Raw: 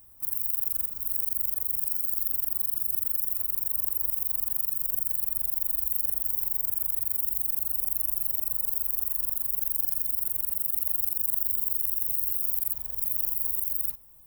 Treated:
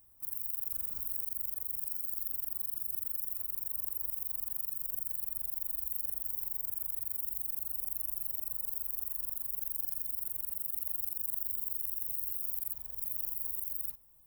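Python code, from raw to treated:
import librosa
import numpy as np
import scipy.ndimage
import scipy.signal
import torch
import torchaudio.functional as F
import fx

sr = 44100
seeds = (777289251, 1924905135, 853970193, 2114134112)

y = fx.env_flatten(x, sr, amount_pct=70, at=(0.72, 1.22))
y = y * 10.0 ** (-8.5 / 20.0)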